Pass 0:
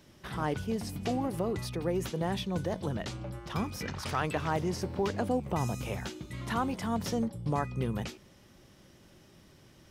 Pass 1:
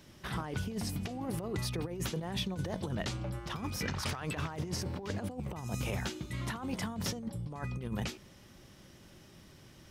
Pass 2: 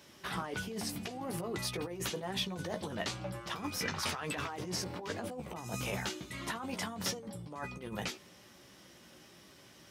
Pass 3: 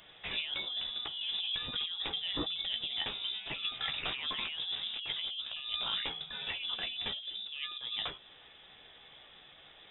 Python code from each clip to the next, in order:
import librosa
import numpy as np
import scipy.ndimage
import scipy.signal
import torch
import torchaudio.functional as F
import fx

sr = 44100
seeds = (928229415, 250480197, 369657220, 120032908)

y1 = fx.peak_eq(x, sr, hz=480.0, db=-2.5, octaves=2.1)
y1 = fx.over_compress(y1, sr, threshold_db=-35.0, ratio=-0.5)
y2 = fx.highpass(y1, sr, hz=350.0, slope=6)
y2 = fx.chorus_voices(y2, sr, voices=4, hz=0.26, base_ms=14, depth_ms=3.7, mix_pct=35)
y2 = y2 * 10.0 ** (5.0 / 20.0)
y3 = fx.dynamic_eq(y2, sr, hz=1900.0, q=0.95, threshold_db=-53.0, ratio=4.0, max_db=-5)
y3 = fx.freq_invert(y3, sr, carrier_hz=3700)
y3 = y3 * 10.0 ** (2.5 / 20.0)